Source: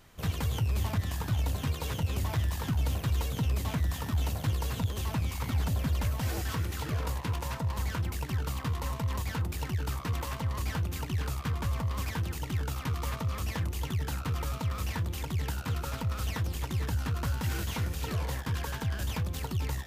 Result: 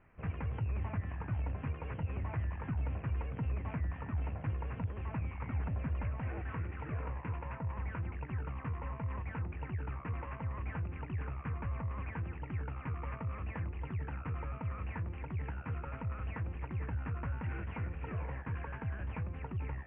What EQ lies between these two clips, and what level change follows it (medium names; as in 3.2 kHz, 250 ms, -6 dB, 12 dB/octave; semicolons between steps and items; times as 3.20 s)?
steep low-pass 2.6 kHz 72 dB/octave; -6.5 dB